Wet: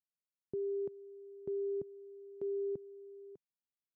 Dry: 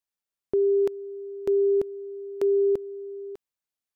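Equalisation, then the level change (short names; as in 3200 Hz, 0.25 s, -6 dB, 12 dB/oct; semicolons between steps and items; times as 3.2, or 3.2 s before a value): band-pass 150 Hz, Q 1.5; -4.0 dB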